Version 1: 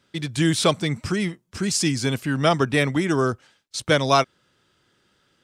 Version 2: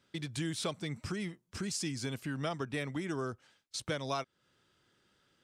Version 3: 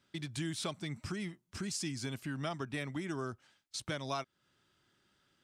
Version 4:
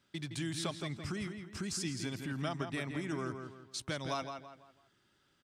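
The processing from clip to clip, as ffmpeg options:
ffmpeg -i in.wav -af "acompressor=threshold=-30dB:ratio=2.5,volume=-7dB" out.wav
ffmpeg -i in.wav -af "equalizer=frequency=480:width_type=o:width=0.23:gain=-9,volume=-1.5dB" out.wav
ffmpeg -i in.wav -filter_complex "[0:a]asplit=2[link_01][link_02];[link_02]adelay=166,lowpass=frequency=3600:poles=1,volume=-6.5dB,asplit=2[link_03][link_04];[link_04]adelay=166,lowpass=frequency=3600:poles=1,volume=0.37,asplit=2[link_05][link_06];[link_06]adelay=166,lowpass=frequency=3600:poles=1,volume=0.37,asplit=2[link_07][link_08];[link_08]adelay=166,lowpass=frequency=3600:poles=1,volume=0.37[link_09];[link_01][link_03][link_05][link_07][link_09]amix=inputs=5:normalize=0" out.wav

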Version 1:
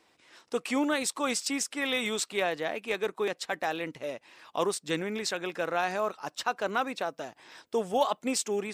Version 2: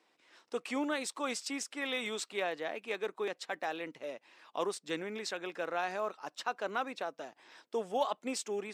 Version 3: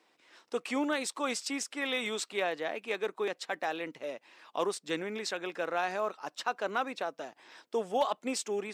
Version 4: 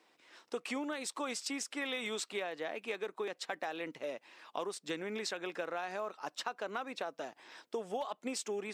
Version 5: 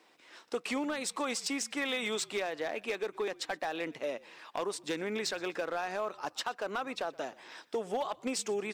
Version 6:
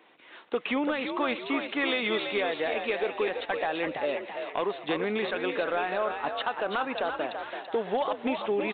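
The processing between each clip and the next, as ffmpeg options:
ffmpeg -i in.wav -af "highpass=220,highshelf=frequency=9000:gain=-9,volume=-5.5dB" out.wav
ffmpeg -i in.wav -af "asoftclip=type=hard:threshold=-22dB,volume=3dB" out.wav
ffmpeg -i in.wav -af "acompressor=threshold=-34dB:ratio=10" out.wav
ffmpeg -i in.wav -filter_complex "[0:a]asoftclip=type=hard:threshold=-31dB,asplit=3[link_01][link_02][link_03];[link_02]adelay=122,afreqshift=-54,volume=-23dB[link_04];[link_03]adelay=244,afreqshift=-108,volume=-32.4dB[link_05];[link_01][link_04][link_05]amix=inputs=3:normalize=0,volume=4.5dB" out.wav
ffmpeg -i in.wav -filter_complex "[0:a]aresample=8000,aresample=44100,asplit=6[link_01][link_02][link_03][link_04][link_05][link_06];[link_02]adelay=334,afreqshift=55,volume=-6.5dB[link_07];[link_03]adelay=668,afreqshift=110,volume=-13.2dB[link_08];[link_04]adelay=1002,afreqshift=165,volume=-20dB[link_09];[link_05]adelay=1336,afreqshift=220,volume=-26.7dB[link_10];[link_06]adelay=1670,afreqshift=275,volume=-33.5dB[link_11];[link_01][link_07][link_08][link_09][link_10][link_11]amix=inputs=6:normalize=0,volume=5.5dB" out.wav

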